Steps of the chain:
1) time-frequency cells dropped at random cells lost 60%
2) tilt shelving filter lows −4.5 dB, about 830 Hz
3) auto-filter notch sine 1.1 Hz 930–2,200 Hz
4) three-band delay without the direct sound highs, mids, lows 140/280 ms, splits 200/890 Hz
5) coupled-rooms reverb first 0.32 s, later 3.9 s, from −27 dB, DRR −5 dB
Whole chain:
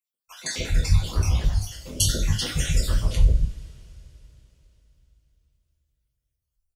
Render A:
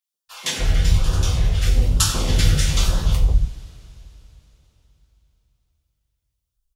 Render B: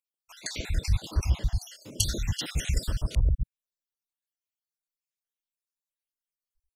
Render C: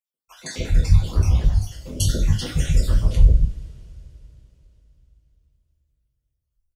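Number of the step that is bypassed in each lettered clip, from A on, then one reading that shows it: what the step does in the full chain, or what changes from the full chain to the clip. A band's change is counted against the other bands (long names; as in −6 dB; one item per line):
1, 1 kHz band +3.5 dB
5, echo-to-direct ratio 6.0 dB to −6.5 dB
2, 125 Hz band +6.5 dB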